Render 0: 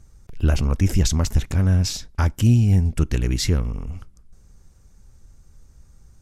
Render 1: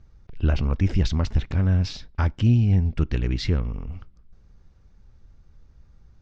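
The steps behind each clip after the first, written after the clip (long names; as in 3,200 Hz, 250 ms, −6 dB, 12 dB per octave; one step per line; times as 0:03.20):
low-pass filter 4,400 Hz 24 dB per octave
level −2.5 dB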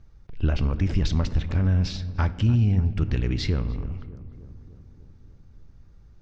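brickwall limiter −13.5 dBFS, peak gain reduction 4.5 dB
feedback echo with a low-pass in the loop 297 ms, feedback 67%, low-pass 1,500 Hz, level −16 dB
on a send at −14 dB: convolution reverb RT60 1.1 s, pre-delay 7 ms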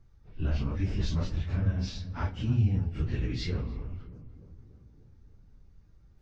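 random phases in long frames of 100 ms
level −6.5 dB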